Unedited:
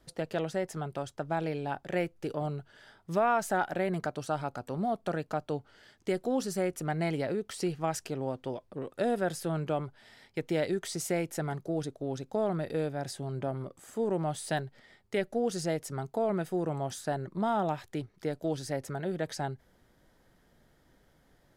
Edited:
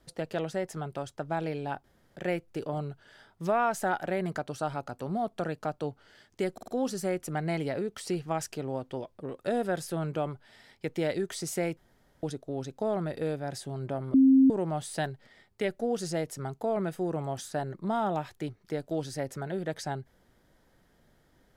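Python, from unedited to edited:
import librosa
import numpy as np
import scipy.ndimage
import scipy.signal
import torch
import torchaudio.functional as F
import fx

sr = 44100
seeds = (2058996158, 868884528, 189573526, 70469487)

y = fx.edit(x, sr, fx.insert_room_tone(at_s=1.84, length_s=0.32),
    fx.stutter(start_s=6.21, slice_s=0.05, count=4),
    fx.room_tone_fill(start_s=11.3, length_s=0.46),
    fx.bleep(start_s=13.67, length_s=0.36, hz=266.0, db=-15.5), tone=tone)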